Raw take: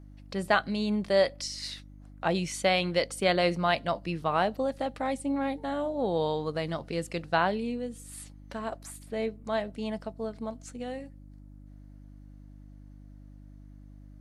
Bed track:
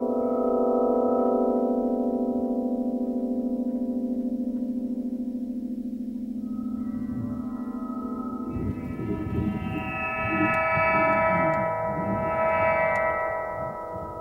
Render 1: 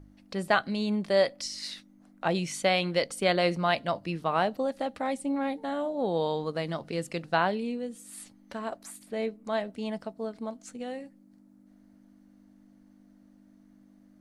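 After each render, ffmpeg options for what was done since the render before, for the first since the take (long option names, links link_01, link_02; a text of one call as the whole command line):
ffmpeg -i in.wav -af "bandreject=frequency=50:width_type=h:width=4,bandreject=frequency=100:width_type=h:width=4,bandreject=frequency=150:width_type=h:width=4" out.wav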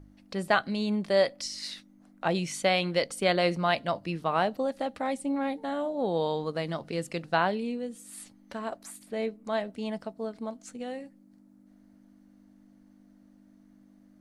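ffmpeg -i in.wav -af anull out.wav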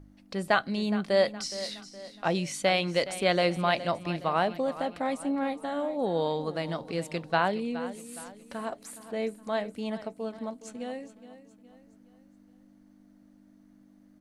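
ffmpeg -i in.wav -af "aecho=1:1:417|834|1251|1668:0.188|0.081|0.0348|0.015" out.wav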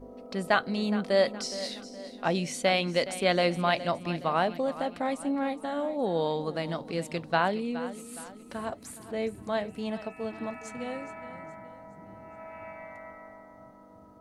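ffmpeg -i in.wav -i bed.wav -filter_complex "[1:a]volume=-21dB[link_01];[0:a][link_01]amix=inputs=2:normalize=0" out.wav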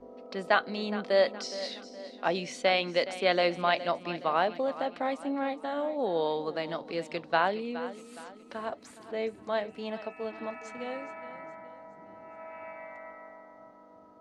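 ffmpeg -i in.wav -filter_complex "[0:a]acrossover=split=250 6200:gain=0.2 1 0.1[link_01][link_02][link_03];[link_01][link_02][link_03]amix=inputs=3:normalize=0" out.wav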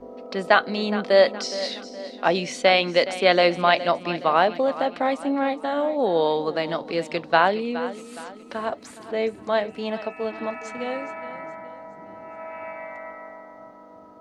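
ffmpeg -i in.wav -af "volume=8dB,alimiter=limit=-2dB:level=0:latency=1" out.wav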